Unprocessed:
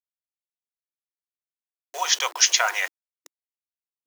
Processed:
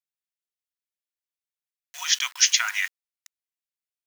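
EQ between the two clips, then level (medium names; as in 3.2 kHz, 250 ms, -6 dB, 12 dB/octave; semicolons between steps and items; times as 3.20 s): ladder high-pass 1.3 kHz, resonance 20%; +4.0 dB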